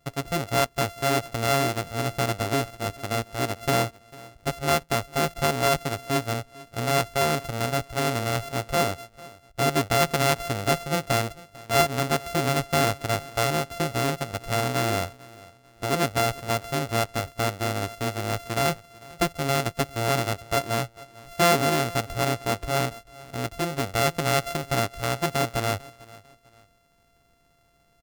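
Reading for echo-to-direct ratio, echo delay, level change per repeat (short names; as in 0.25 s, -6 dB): -21.5 dB, 0.447 s, -9.5 dB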